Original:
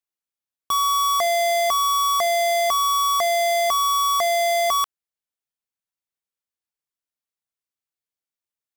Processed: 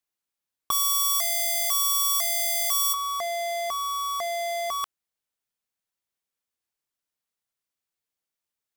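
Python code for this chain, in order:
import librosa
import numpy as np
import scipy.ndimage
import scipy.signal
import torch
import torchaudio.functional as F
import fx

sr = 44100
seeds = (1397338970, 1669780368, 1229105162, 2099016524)

y = fx.differentiator(x, sr, at=(0.71, 2.94))
y = fx.over_compress(y, sr, threshold_db=-26.0, ratio=-1.0)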